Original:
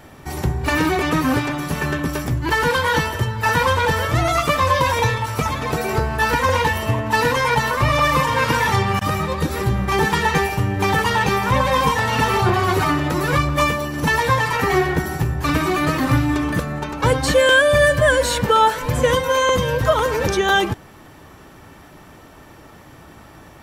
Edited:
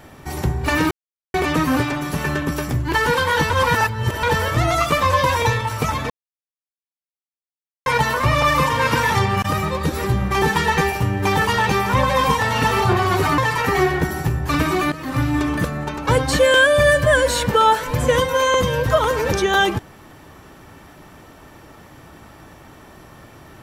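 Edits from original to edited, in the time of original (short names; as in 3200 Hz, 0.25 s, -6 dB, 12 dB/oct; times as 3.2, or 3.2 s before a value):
0.91 insert silence 0.43 s
3.07–3.8 reverse
5.67–7.43 mute
12.95–14.33 cut
15.87–16.31 fade in, from -18 dB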